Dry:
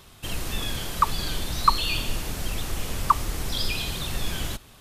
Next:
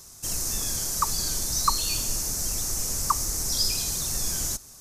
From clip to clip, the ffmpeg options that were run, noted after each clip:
ffmpeg -i in.wav -af "highshelf=frequency=4400:width_type=q:width=3:gain=11.5,volume=-4.5dB" out.wav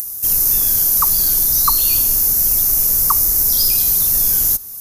ffmpeg -i in.wav -filter_complex "[0:a]acrossover=split=6400[link_01][link_02];[link_02]acompressor=mode=upward:threshold=-37dB:ratio=2.5[link_03];[link_01][link_03]amix=inputs=2:normalize=0,aexciter=amount=14.1:drive=1.2:freq=11000,volume=4dB" out.wav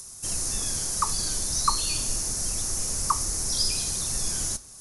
ffmpeg -i in.wav -af "flanger=delay=9.2:depth=1.3:regen=-80:speed=0.93:shape=sinusoidal,aresample=22050,aresample=44100" out.wav

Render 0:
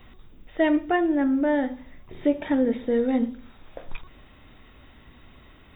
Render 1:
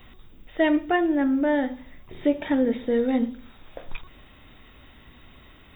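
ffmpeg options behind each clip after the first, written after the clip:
ffmpeg -i in.wav -af "highshelf=frequency=3200:gain=6.5" out.wav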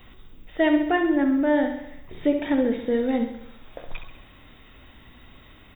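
ffmpeg -i in.wav -af "aecho=1:1:67|134|201|268|335|402|469:0.398|0.223|0.125|0.0699|0.0392|0.0219|0.0123" out.wav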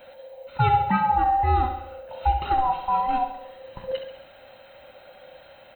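ffmpeg -i in.wav -af "afftfilt=real='real(if(lt(b,1008),b+24*(1-2*mod(floor(b/24),2)),b),0)':imag='imag(if(lt(b,1008),b+24*(1-2*mod(floor(b/24),2)),b),0)':win_size=2048:overlap=0.75" out.wav

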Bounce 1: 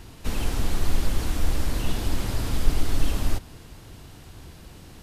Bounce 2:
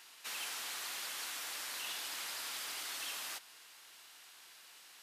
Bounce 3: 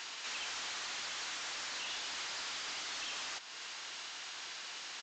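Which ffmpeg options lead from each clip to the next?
ffmpeg -i in.wav -af "highpass=1400,volume=-3dB" out.wav
ffmpeg -i in.wav -af "asoftclip=type=tanh:threshold=-39dB,aresample=16000,aresample=44100,alimiter=level_in=23dB:limit=-24dB:level=0:latency=1:release=294,volume=-23dB,volume=13.5dB" out.wav

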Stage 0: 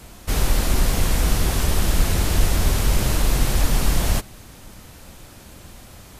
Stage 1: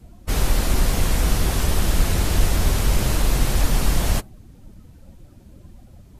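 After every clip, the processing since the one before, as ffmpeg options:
ffmpeg -i in.wav -af "afftdn=noise_reduction=17:noise_floor=-40" out.wav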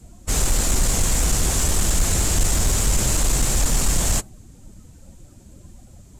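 ffmpeg -i in.wav -af "equalizer=frequency=7400:width_type=o:width=0.68:gain=15,asoftclip=type=tanh:threshold=-10.5dB" out.wav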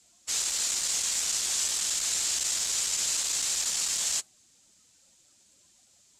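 ffmpeg -i in.wav -af "bandpass=frequency=4600:width_type=q:width=1.1:csg=0" out.wav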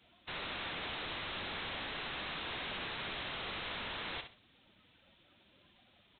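ffmpeg -i in.wav -af "aresample=8000,aeval=exprs='(mod(126*val(0)+1,2)-1)/126':channel_layout=same,aresample=44100,aecho=1:1:65|130|195:0.355|0.0887|0.0222,volume=5dB" out.wav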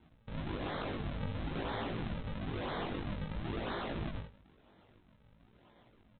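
ffmpeg -i in.wav -af "aresample=8000,acrusher=samples=13:mix=1:aa=0.000001:lfo=1:lforange=20.8:lforate=1,aresample=44100,flanger=delay=17.5:depth=3.3:speed=0.53,volume=6.5dB" out.wav

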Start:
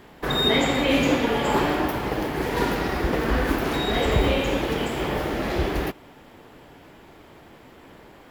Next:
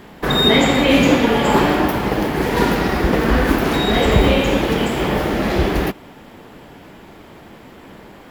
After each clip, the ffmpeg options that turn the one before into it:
ffmpeg -i in.wav -af "equalizer=frequency=200:width=3.2:gain=5.5,volume=6.5dB" out.wav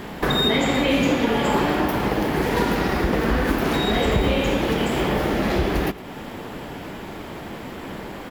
ffmpeg -i in.wav -filter_complex "[0:a]acompressor=threshold=-30dB:ratio=2.5,asplit=2[link_01][link_02];[link_02]adelay=110.8,volume=-17dB,highshelf=frequency=4000:gain=-2.49[link_03];[link_01][link_03]amix=inputs=2:normalize=0,volume=6.5dB" out.wav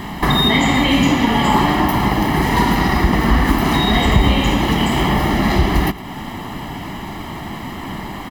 ffmpeg -i in.wav -af "aecho=1:1:1:0.7,volume=4.5dB" out.wav

